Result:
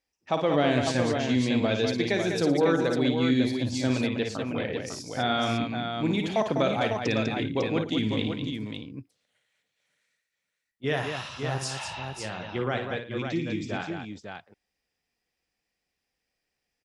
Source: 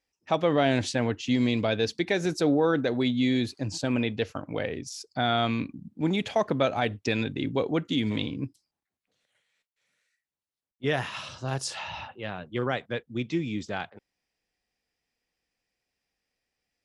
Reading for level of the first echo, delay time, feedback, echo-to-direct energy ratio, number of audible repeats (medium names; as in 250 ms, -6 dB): -7.0 dB, 55 ms, no regular repeats, -1.5 dB, 4